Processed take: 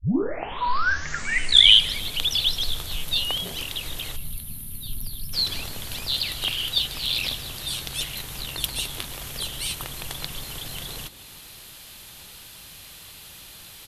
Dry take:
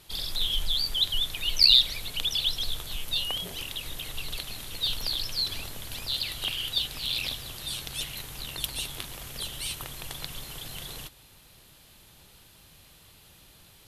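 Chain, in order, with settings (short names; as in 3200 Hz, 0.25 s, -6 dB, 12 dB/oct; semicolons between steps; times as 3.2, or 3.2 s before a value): tape start at the beginning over 2.06 s; spectral gain 4.16–5.34, 270–9300 Hz -20 dB; on a send: frequency-shifting echo 0.155 s, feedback 56%, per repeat +73 Hz, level -19 dB; on the sum: mismatched tape noise reduction encoder only; gain +4.5 dB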